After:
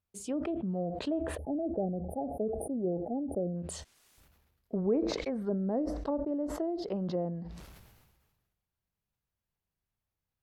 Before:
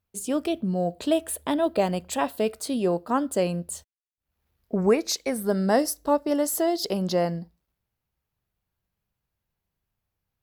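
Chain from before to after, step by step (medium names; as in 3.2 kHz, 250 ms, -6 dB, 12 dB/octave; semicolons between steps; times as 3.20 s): low-pass that closes with the level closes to 500 Hz, closed at -20.5 dBFS; spectral selection erased 1.38–3.56 s, 850–9100 Hz; decay stretcher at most 40 dB/s; trim -7.5 dB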